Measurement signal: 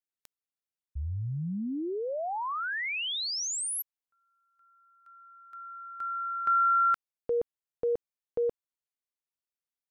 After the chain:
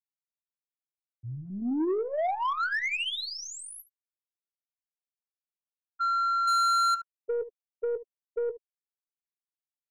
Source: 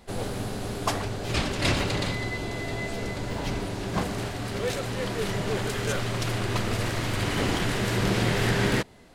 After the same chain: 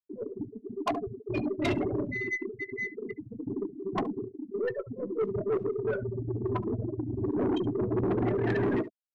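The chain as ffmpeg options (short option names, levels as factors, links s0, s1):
-filter_complex "[0:a]highpass=150,afftfilt=real='re*gte(hypot(re,im),0.141)':imag='im*gte(hypot(re,im),0.141)':win_size=1024:overlap=0.75,highshelf=f=8900:g=-9,aeval=exprs='0.224*(cos(1*acos(clip(val(0)/0.224,-1,1)))-cos(1*PI/2))+0.0316*(cos(4*acos(clip(val(0)/0.224,-1,1)))-cos(4*PI/2))+0.0178*(cos(6*acos(clip(val(0)/0.224,-1,1)))-cos(6*PI/2))':c=same,aemphasis=mode=reproduction:type=cd,aecho=1:1:2.9:0.71,acrossover=split=3500[s0][s1];[s1]acompressor=threshold=0.00708:ratio=4:attack=1:release=60[s2];[s0][s2]amix=inputs=2:normalize=0,asplit=2[s3][s4];[s4]asoftclip=type=hard:threshold=0.0562,volume=0.708[s5];[s3][s5]amix=inputs=2:normalize=0,aecho=1:1:16|71:0.251|0.126,asoftclip=type=tanh:threshold=0.0708"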